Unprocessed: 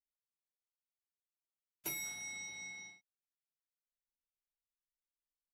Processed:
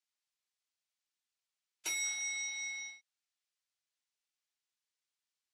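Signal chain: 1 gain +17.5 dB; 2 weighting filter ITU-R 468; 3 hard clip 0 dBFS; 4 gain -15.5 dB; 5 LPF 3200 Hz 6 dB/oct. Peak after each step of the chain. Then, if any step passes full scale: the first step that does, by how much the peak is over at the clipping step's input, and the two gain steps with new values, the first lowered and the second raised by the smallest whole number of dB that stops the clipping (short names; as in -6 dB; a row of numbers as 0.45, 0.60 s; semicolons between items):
-11.5, -4.0, -4.0, -19.5, -25.5 dBFS; no overload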